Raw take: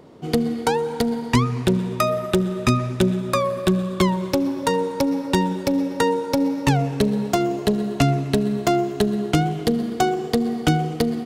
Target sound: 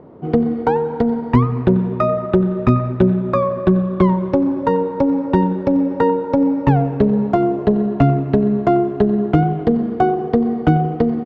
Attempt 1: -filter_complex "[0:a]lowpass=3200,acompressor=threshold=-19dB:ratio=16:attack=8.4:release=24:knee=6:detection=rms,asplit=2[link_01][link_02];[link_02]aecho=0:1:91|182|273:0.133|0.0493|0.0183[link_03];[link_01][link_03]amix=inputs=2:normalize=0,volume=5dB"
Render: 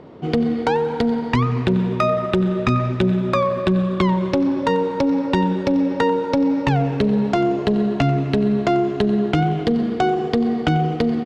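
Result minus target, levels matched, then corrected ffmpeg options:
4,000 Hz band +14.0 dB; downward compressor: peak gain reduction +7.5 dB
-filter_complex "[0:a]lowpass=1200,asplit=2[link_01][link_02];[link_02]aecho=0:1:91|182|273:0.133|0.0493|0.0183[link_03];[link_01][link_03]amix=inputs=2:normalize=0,volume=5dB"

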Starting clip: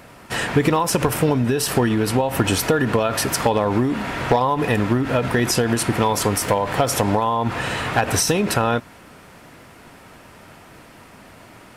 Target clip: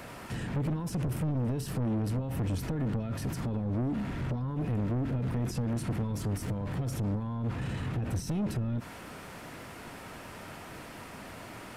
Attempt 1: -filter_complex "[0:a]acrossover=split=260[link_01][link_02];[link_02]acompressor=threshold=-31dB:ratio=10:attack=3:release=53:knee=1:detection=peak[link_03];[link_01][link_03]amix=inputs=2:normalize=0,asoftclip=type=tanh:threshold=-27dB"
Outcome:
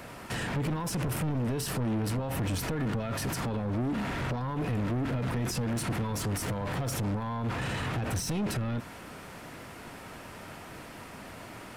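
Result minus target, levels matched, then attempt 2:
downward compressor: peak gain reduction −9.5 dB
-filter_complex "[0:a]acrossover=split=260[link_01][link_02];[link_02]acompressor=threshold=-41.5dB:ratio=10:attack=3:release=53:knee=1:detection=peak[link_03];[link_01][link_03]amix=inputs=2:normalize=0,asoftclip=type=tanh:threshold=-27dB"

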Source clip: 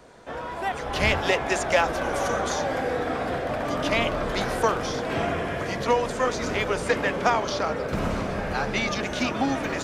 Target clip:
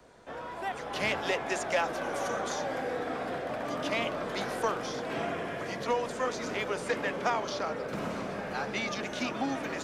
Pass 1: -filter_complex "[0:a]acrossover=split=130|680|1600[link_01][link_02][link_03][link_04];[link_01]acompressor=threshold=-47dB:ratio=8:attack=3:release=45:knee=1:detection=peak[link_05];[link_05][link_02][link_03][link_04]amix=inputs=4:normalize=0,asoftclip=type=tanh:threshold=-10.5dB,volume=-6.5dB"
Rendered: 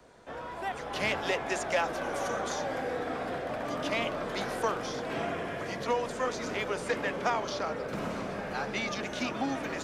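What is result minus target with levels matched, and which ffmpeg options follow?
downward compressor: peak gain reduction −5.5 dB
-filter_complex "[0:a]acrossover=split=130|680|1600[link_01][link_02][link_03][link_04];[link_01]acompressor=threshold=-53dB:ratio=8:attack=3:release=45:knee=1:detection=peak[link_05];[link_05][link_02][link_03][link_04]amix=inputs=4:normalize=0,asoftclip=type=tanh:threshold=-10.5dB,volume=-6.5dB"

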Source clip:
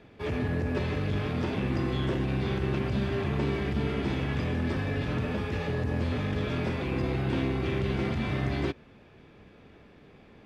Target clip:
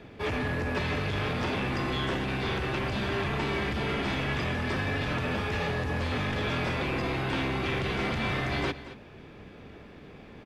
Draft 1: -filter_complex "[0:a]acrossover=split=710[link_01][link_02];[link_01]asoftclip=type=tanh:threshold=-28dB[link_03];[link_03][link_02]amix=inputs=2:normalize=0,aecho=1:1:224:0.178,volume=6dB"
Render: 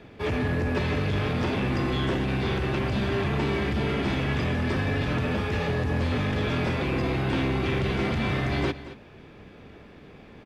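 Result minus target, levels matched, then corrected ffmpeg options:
soft clipping: distortion −6 dB
-filter_complex "[0:a]acrossover=split=710[link_01][link_02];[link_01]asoftclip=type=tanh:threshold=-36dB[link_03];[link_03][link_02]amix=inputs=2:normalize=0,aecho=1:1:224:0.178,volume=6dB"

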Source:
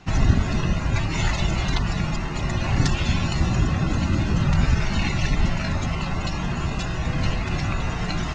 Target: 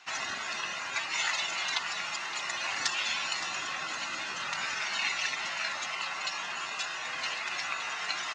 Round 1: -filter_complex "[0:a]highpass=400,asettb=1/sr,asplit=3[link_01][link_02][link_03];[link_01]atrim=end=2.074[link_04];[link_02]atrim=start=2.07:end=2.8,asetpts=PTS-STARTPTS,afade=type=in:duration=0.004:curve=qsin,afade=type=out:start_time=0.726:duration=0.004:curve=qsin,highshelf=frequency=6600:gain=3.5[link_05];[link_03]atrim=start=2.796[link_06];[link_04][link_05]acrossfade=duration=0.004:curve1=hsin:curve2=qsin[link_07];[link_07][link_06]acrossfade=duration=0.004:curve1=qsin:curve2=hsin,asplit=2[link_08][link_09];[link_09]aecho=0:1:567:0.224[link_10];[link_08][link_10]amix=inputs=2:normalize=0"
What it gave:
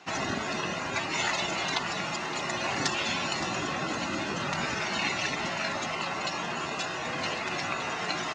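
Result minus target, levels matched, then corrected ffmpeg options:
500 Hz band +10.5 dB
-filter_complex "[0:a]highpass=1200,asettb=1/sr,asplit=3[link_01][link_02][link_03];[link_01]atrim=end=2.074[link_04];[link_02]atrim=start=2.07:end=2.8,asetpts=PTS-STARTPTS,afade=type=in:duration=0.004:curve=qsin,afade=type=out:start_time=0.726:duration=0.004:curve=qsin,highshelf=frequency=6600:gain=3.5[link_05];[link_03]atrim=start=2.796[link_06];[link_04][link_05]acrossfade=duration=0.004:curve1=hsin:curve2=qsin[link_07];[link_07][link_06]acrossfade=duration=0.004:curve1=qsin:curve2=hsin,asplit=2[link_08][link_09];[link_09]aecho=0:1:567:0.224[link_10];[link_08][link_10]amix=inputs=2:normalize=0"

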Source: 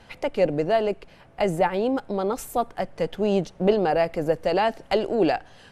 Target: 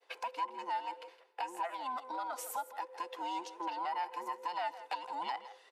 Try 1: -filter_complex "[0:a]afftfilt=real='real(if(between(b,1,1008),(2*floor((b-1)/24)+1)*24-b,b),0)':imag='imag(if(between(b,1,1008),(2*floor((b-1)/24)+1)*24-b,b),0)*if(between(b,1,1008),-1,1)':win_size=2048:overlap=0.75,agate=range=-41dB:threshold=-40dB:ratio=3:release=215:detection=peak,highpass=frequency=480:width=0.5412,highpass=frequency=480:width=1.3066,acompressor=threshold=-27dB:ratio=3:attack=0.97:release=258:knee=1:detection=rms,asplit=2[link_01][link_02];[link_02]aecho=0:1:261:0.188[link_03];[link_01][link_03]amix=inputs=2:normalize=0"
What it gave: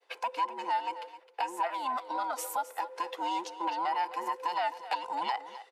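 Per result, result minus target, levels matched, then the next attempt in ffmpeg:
echo 98 ms late; downward compressor: peak gain reduction −6 dB
-filter_complex "[0:a]afftfilt=real='real(if(between(b,1,1008),(2*floor((b-1)/24)+1)*24-b,b),0)':imag='imag(if(between(b,1,1008),(2*floor((b-1)/24)+1)*24-b,b),0)*if(between(b,1,1008),-1,1)':win_size=2048:overlap=0.75,agate=range=-41dB:threshold=-40dB:ratio=3:release=215:detection=peak,highpass=frequency=480:width=0.5412,highpass=frequency=480:width=1.3066,acompressor=threshold=-27dB:ratio=3:attack=0.97:release=258:knee=1:detection=rms,asplit=2[link_01][link_02];[link_02]aecho=0:1:163:0.188[link_03];[link_01][link_03]amix=inputs=2:normalize=0"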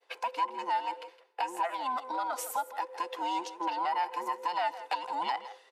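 downward compressor: peak gain reduction −6 dB
-filter_complex "[0:a]afftfilt=real='real(if(between(b,1,1008),(2*floor((b-1)/24)+1)*24-b,b),0)':imag='imag(if(between(b,1,1008),(2*floor((b-1)/24)+1)*24-b,b),0)*if(between(b,1,1008),-1,1)':win_size=2048:overlap=0.75,agate=range=-41dB:threshold=-40dB:ratio=3:release=215:detection=peak,highpass=frequency=480:width=0.5412,highpass=frequency=480:width=1.3066,acompressor=threshold=-36dB:ratio=3:attack=0.97:release=258:knee=1:detection=rms,asplit=2[link_01][link_02];[link_02]aecho=0:1:163:0.188[link_03];[link_01][link_03]amix=inputs=2:normalize=0"

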